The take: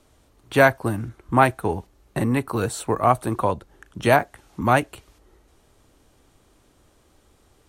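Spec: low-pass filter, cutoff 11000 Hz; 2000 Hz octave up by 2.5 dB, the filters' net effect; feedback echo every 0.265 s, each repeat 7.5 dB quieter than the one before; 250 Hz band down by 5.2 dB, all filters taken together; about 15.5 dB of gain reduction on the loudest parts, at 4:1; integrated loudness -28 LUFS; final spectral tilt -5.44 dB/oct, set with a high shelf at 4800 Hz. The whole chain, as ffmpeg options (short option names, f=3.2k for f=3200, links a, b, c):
-af "lowpass=11k,equalizer=f=250:t=o:g=-6.5,equalizer=f=2k:t=o:g=4.5,highshelf=f=4.8k:g=-6.5,acompressor=threshold=-30dB:ratio=4,aecho=1:1:265|530|795|1060|1325:0.422|0.177|0.0744|0.0312|0.0131,volume=6dB"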